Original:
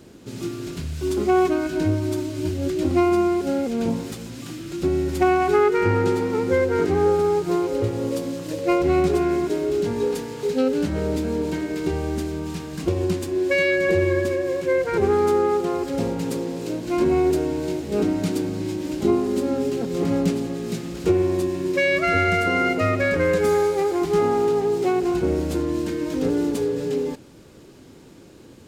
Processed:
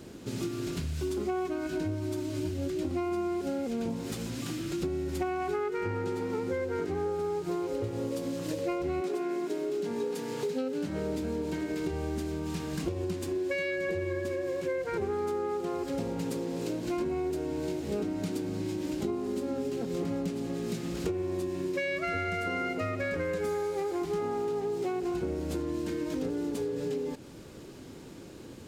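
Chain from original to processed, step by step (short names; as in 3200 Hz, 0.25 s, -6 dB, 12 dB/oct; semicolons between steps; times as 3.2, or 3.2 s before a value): 9–11.21 HPF 250 Hz -> 83 Hz 24 dB/oct; compressor 6:1, threshold -30 dBFS, peak gain reduction 15 dB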